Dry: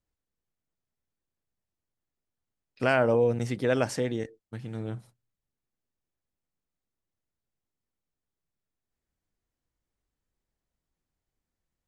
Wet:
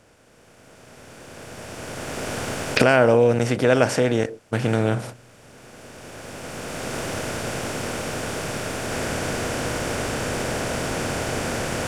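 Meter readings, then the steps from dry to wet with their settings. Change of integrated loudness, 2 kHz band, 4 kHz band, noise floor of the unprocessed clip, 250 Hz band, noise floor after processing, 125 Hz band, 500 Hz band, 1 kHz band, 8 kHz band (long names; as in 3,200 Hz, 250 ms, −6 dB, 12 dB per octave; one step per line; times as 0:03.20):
+3.5 dB, +11.5 dB, +16.0 dB, below −85 dBFS, +10.0 dB, −52 dBFS, +10.5 dB, +9.0 dB, +11.0 dB, +19.0 dB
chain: compressor on every frequency bin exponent 0.6
camcorder AGC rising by 13 dB per second
level +5.5 dB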